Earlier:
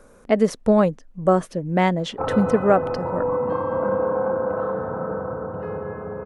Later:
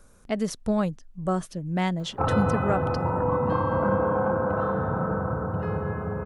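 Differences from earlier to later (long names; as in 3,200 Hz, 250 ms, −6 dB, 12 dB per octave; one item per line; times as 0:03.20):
background +9.5 dB
master: add octave-band graphic EQ 250/500/1,000/2,000 Hz −6/−11/−5/−6 dB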